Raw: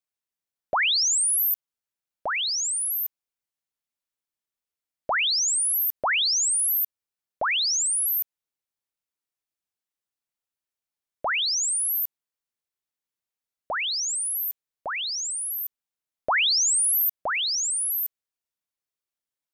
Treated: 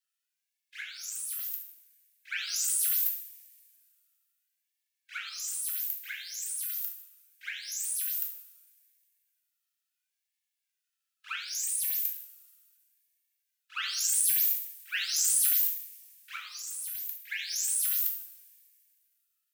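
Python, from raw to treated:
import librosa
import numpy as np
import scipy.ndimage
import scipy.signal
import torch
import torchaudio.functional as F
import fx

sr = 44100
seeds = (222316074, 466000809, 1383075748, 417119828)

y = np.where(x < 0.0, 10.0 ** (-3.0 / 20.0) * x, x)
y = scipy.signal.sosfilt(scipy.signal.butter(16, 1900.0, 'highpass', fs=sr, output='sos'), y)
y = fx.over_compress(y, sr, threshold_db=-30.0, ratio=-0.5)
y = fx.pitch_keep_formants(y, sr, semitones=2.0)
y = fx.rev_double_slope(y, sr, seeds[0], early_s=0.59, late_s=2.3, knee_db=-22, drr_db=-1.0)
y = fx.ring_lfo(y, sr, carrier_hz=440.0, swing_pct=50, hz=0.72)
y = F.gain(torch.from_numpy(y), 2.0).numpy()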